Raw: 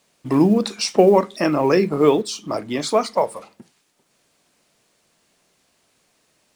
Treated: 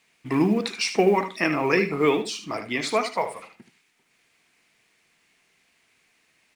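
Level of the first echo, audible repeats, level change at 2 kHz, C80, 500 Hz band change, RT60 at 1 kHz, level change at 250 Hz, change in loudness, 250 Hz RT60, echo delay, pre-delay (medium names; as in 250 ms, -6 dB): -10.5 dB, 2, +4.5 dB, no reverb, -6.5 dB, no reverb, -5.5 dB, -5.0 dB, no reverb, 76 ms, no reverb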